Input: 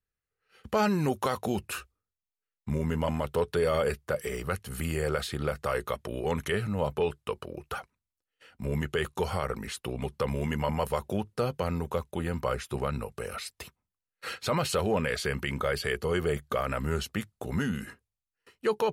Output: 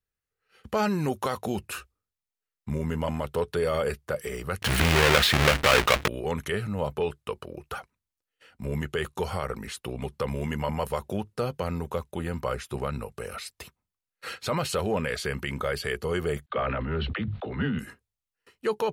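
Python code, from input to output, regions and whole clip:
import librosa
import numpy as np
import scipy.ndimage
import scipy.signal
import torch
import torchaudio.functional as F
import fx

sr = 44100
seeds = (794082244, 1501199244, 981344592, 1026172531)

y = fx.chain(x, sr, fx.halfwave_hold(),
    fx.peak_eq(hz=2300.0, db=11.0, octaves=2.3),
    fx.env_flatten(amount_pct=50), at=(4.62, 6.08))
y = fx.chain(y, sr, fx.steep_lowpass(hz=3900.0, slope=48),
    fx.dispersion(late='lows', ms=50.0, hz=330.0),
    fx.sustainer(db_per_s=22.0), at=(16.46, 17.79))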